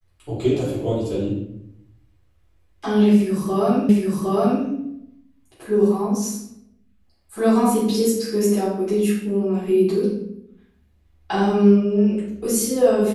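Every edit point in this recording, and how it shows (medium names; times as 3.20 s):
3.89 s: repeat of the last 0.76 s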